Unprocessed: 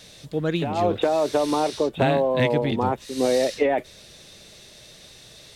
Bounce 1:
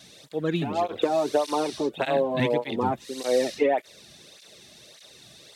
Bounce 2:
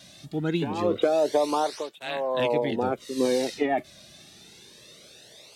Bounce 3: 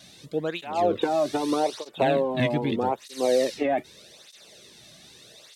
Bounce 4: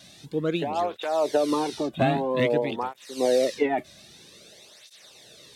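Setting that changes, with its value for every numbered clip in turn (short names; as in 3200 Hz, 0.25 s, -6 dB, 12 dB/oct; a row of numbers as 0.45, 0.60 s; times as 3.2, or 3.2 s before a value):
tape flanging out of phase, nulls at: 1.7, 0.25, 0.81, 0.51 Hz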